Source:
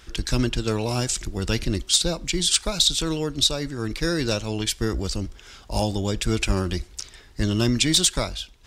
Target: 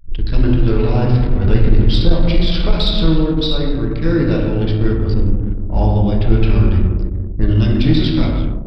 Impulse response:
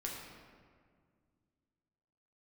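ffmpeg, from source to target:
-filter_complex "[0:a]asettb=1/sr,asplit=3[a][b][c];[a]atrim=end=0.624[d];[b]atrim=start=0.62:end=3.15,asetpts=PTS-STARTPTS,afade=t=in:d=0.004:c=qsin,afade=t=out:st=2.526:d=0.004:c=qsin,aeval=exprs='val(0)+0.5*0.0398*sgn(val(0))':c=same[e];[c]atrim=start=3.146[f];[d][e]acrossfade=d=0.004:c1=hsin:c2=qsin[g];[g][f]acrossfade=d=0.004:c1=qsin:c2=hsin,highshelf=f=2.5k:g=-9.5,bandreject=f=59.27:t=h:w=4,bandreject=f=118.54:t=h:w=4,bandreject=f=177.81:t=h:w=4,bandreject=f=237.08:t=h:w=4,bandreject=f=296.35:t=h:w=4,bandreject=f=355.62:t=h:w=4,bandreject=f=414.89:t=h:w=4,bandreject=f=474.16:t=h:w=4,bandreject=f=533.43:t=h:w=4,bandreject=f=592.7:t=h:w=4,bandreject=f=651.97:t=h:w=4,bandreject=f=711.24:t=h:w=4,bandreject=f=770.51:t=h:w=4,bandreject=f=829.78:t=h:w=4,bandreject=f=889.05:t=h:w=4,bandreject=f=948.32:t=h:w=4,bandreject=f=1.00759k:t=h:w=4,bandreject=f=1.06686k:t=h:w=4,bandreject=f=1.12613k:t=h:w=4,bandreject=f=1.1854k:t=h:w=4,bandreject=f=1.24467k:t=h:w=4,bandreject=f=1.30394k:t=h:w=4,bandreject=f=1.36321k:t=h:w=4,bandreject=f=1.42248k:t=h:w=4,bandreject=f=1.48175k:t=h:w=4,bandreject=f=1.54102k:t=h:w=4,bandreject=f=1.60029k:t=h:w=4,bandreject=f=1.65956k:t=h:w=4,bandreject=f=1.71883k:t=h:w=4,bandreject=f=1.7781k:t=h:w=4,bandreject=f=1.83737k:t=h:w=4,bandreject=f=1.89664k:t=h:w=4,bandreject=f=1.95591k:t=h:w=4,bandreject=f=2.01518k:t=h:w=4,bandreject=f=2.07445k:t=h:w=4,bandreject=f=2.13372k:t=h:w=4,bandreject=f=2.19299k:t=h:w=4,bandreject=f=2.25226k:t=h:w=4,aresample=11025,aresample=44100,acrossover=split=1700[h][i];[h]aeval=exprs='val(0)*(1-0.5/2+0.5/2*cos(2*PI*1.9*n/s))':c=same[j];[i]aeval=exprs='val(0)*(1-0.5/2-0.5/2*cos(2*PI*1.9*n/s))':c=same[k];[j][k]amix=inputs=2:normalize=0,lowshelf=f=120:g=10.5[l];[1:a]atrim=start_sample=2205[m];[l][m]afir=irnorm=-1:irlink=0,anlmdn=2.51,acontrast=84,volume=1dB"

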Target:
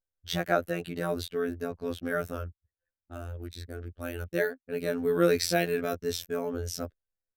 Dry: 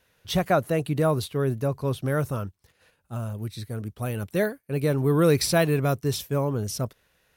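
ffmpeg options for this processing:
-af "afftfilt=real='hypot(re,im)*cos(PI*b)':imag='0':win_size=2048:overlap=0.75,equalizer=f=160:t=o:w=0.33:g=-11,equalizer=f=1k:t=o:w=0.33:g=-11,equalizer=f=1.6k:t=o:w=0.33:g=6,equalizer=f=10k:t=o:w=0.33:g=-7,anlmdn=0.01"

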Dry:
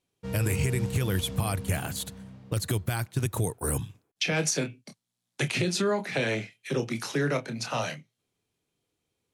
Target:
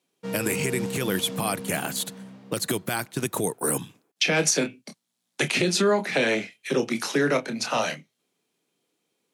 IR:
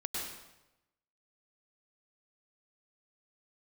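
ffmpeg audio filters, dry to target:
-af "highpass=f=180:w=0.5412,highpass=f=180:w=1.3066,volume=5.5dB"

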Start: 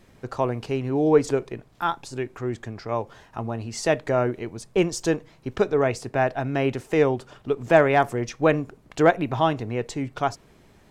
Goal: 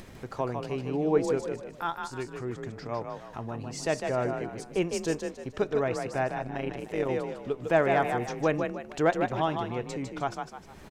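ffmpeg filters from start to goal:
-filter_complex "[0:a]acompressor=mode=upward:threshold=-28dB:ratio=2.5,asplit=5[a][b][c][d][e];[b]adelay=153,afreqshift=35,volume=-5.5dB[f];[c]adelay=306,afreqshift=70,volume=-14.1dB[g];[d]adelay=459,afreqshift=105,volume=-22.8dB[h];[e]adelay=612,afreqshift=140,volume=-31.4dB[i];[a][f][g][h][i]amix=inputs=5:normalize=0,asplit=3[j][k][l];[j]afade=t=out:st=6.38:d=0.02[m];[k]tremolo=f=110:d=0.788,afade=t=in:st=6.38:d=0.02,afade=t=out:st=7.08:d=0.02[n];[l]afade=t=in:st=7.08:d=0.02[o];[m][n][o]amix=inputs=3:normalize=0,volume=-7dB"

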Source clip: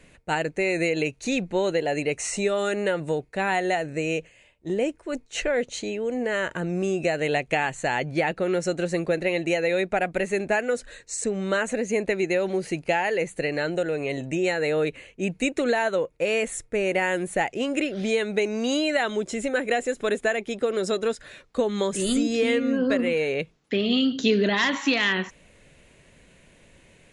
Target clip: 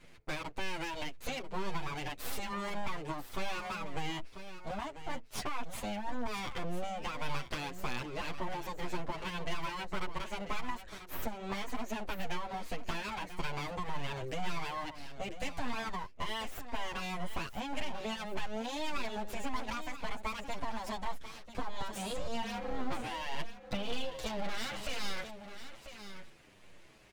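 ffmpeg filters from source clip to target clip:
-filter_complex "[0:a]highshelf=f=8.2k:g=-12,acompressor=threshold=-29dB:ratio=10,aeval=exprs='abs(val(0))':c=same,aecho=1:1:992:0.266,asplit=2[a][b];[b]adelay=8.1,afreqshift=-1.8[c];[a][c]amix=inputs=2:normalize=1,volume=1dB"

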